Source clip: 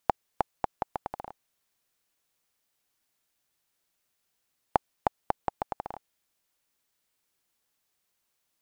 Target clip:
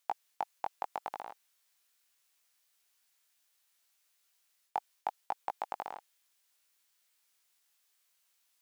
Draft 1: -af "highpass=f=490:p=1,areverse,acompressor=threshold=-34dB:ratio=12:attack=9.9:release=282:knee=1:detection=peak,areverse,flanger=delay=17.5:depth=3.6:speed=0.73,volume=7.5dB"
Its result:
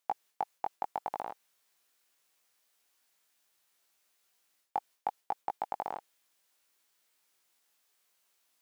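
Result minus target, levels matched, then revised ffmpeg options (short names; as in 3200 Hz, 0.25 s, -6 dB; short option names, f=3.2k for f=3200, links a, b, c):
2000 Hz band -4.0 dB
-af "highpass=f=1.6k:p=1,areverse,acompressor=threshold=-34dB:ratio=12:attack=9.9:release=282:knee=1:detection=peak,areverse,flanger=delay=17.5:depth=3.6:speed=0.73,volume=7.5dB"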